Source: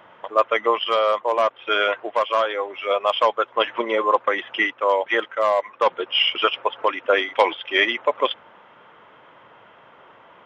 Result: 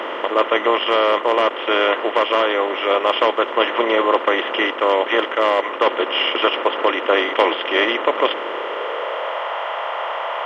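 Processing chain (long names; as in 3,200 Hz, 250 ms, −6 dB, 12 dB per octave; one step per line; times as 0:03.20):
compressor on every frequency bin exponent 0.4
high-pass filter sweep 290 Hz → 700 Hz, 0:08.24–0:09.50
level −4.5 dB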